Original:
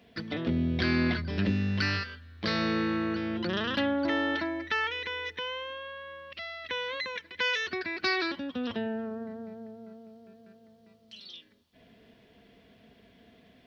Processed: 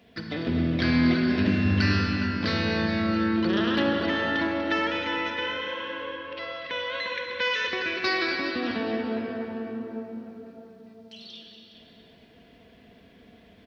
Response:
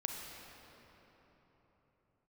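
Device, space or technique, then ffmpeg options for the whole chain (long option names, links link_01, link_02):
cave: -filter_complex "[0:a]asettb=1/sr,asplit=3[link_01][link_02][link_03];[link_01]atrim=end=6.054[link_04];[link_02]atrim=start=6.05:end=7.82,asetpts=PTS-STARTPTS,afade=type=in:duration=0.004:curve=qsin,afade=type=out:start_time=1.766:duration=0.004:curve=qsin,lowpass=5900[link_05];[link_03]atrim=start=7.816[link_06];[link_04][link_05]acrossfade=duration=0.004:curve1=hsin:curve2=qsin[link_07];[link_07][link_06]acrossfade=duration=0.004:curve1=qsin:curve2=hsin,aecho=1:1:241:0.282[link_08];[1:a]atrim=start_sample=2205[link_09];[link_08][link_09]afir=irnorm=-1:irlink=0,asplit=2[link_10][link_11];[link_11]adelay=414,volume=-9dB,highshelf=frequency=4000:gain=-9.32[link_12];[link_10][link_12]amix=inputs=2:normalize=0,volume=2.5dB"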